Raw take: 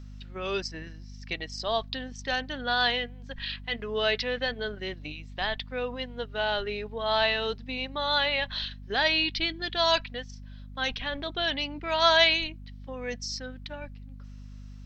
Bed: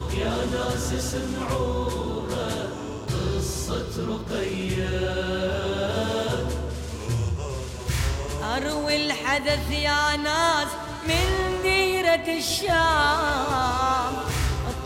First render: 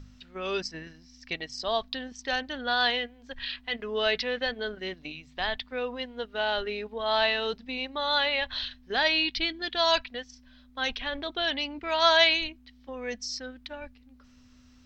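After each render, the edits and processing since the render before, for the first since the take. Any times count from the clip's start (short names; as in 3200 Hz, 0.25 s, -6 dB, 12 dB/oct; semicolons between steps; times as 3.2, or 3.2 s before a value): de-hum 50 Hz, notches 4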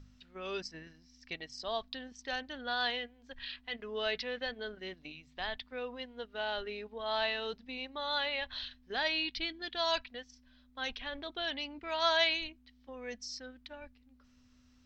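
gain -8 dB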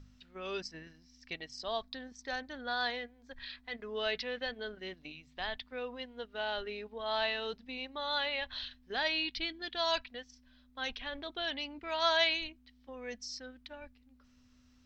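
1.81–3.91 bell 2900 Hz -10.5 dB 0.27 oct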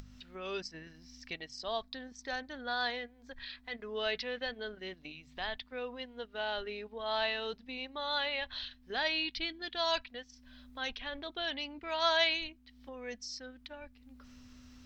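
upward compressor, threshold -44 dBFS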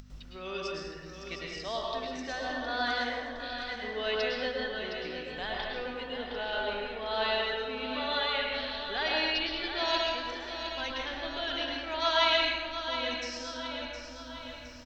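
on a send: feedback echo 0.714 s, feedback 52%, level -8.5 dB; on the sum: plate-style reverb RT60 1.4 s, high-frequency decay 0.55×, pre-delay 95 ms, DRR -2.5 dB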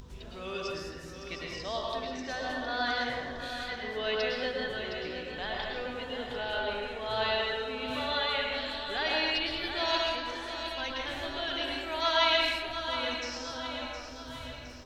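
add bed -24 dB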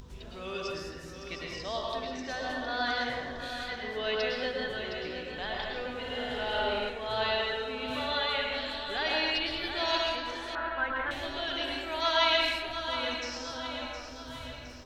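5.99–6.9 flutter echo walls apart 9 m, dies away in 1 s; 10.55–11.11 synth low-pass 1500 Hz, resonance Q 3.5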